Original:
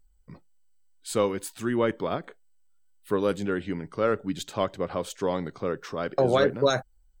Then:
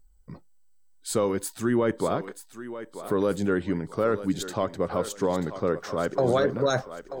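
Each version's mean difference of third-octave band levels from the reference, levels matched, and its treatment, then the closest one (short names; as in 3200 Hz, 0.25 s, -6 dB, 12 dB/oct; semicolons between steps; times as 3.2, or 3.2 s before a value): 3.5 dB: bell 2700 Hz -7 dB 0.96 oct; limiter -18 dBFS, peak gain reduction 7.5 dB; on a send: thinning echo 0.935 s, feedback 37%, high-pass 320 Hz, level -11 dB; on the sum: gain +4 dB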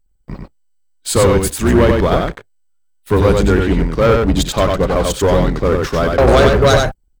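7.5 dB: octaver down 2 oct, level +1 dB; sample leveller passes 3; on a send: echo 94 ms -3.5 dB; on the sum: gain +4 dB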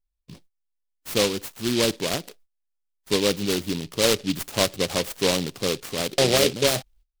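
9.5 dB: gate -54 dBFS, range -20 dB; vocal rider within 3 dB 2 s; noise-modulated delay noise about 3500 Hz, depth 0.19 ms; gain +3 dB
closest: first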